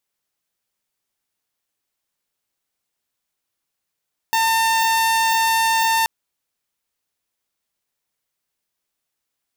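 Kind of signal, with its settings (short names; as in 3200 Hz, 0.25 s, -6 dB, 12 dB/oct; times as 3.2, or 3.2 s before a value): tone saw 902 Hz -13 dBFS 1.73 s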